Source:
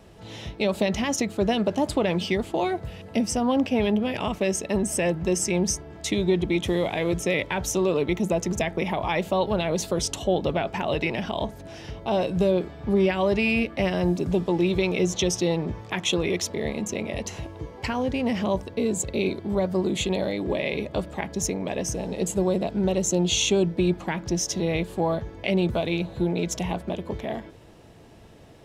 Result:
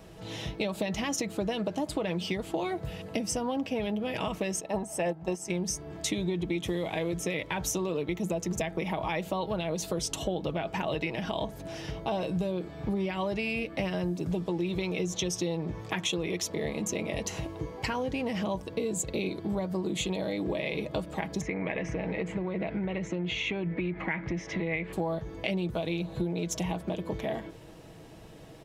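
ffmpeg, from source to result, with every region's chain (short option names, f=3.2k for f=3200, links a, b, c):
-filter_complex "[0:a]asettb=1/sr,asplit=3[a][b][c];[a]atrim=end=4.604[d];[b]atrim=start=4.6:end=5.5,asetpts=PTS-STARTPTS,afade=t=in:d=0.004:c=qsin,afade=t=out:st=0.896:d=0.004:c=qsin,agate=range=-10dB:threshold=-24dB:ratio=16:release=100:detection=peak,equalizer=f=780:w=1.6:g=12.5[e];[c]atrim=start=5.496[f];[d][e]acrossfade=d=0.004:c1=hsin:c2=qsin[g];[g][f]acrossfade=d=0.004:c1=qsin:c2=hsin,asettb=1/sr,asplit=3[h][i][j];[h]atrim=end=21.414[k];[i]atrim=start=21.41:end=24.93,asetpts=PTS-STARTPTS,afade=t=in:d=0.004:c=qsin,afade=t=out:st=3.516:d=0.004:c=qsin,acompressor=threshold=-26dB:ratio=4:attack=3.2:release=140:knee=1:detection=peak,lowpass=f=2.1k:t=q:w=6[l];[j]atrim=start=24.926[m];[k][l]acrossfade=d=0.004:c1=hsin:c2=qsin[n];[n][m]acrossfade=d=0.004:c1=qsin:c2=hsin,highshelf=f=12k:g=5.5,aecho=1:1:6.3:0.4,acompressor=threshold=-28dB:ratio=5"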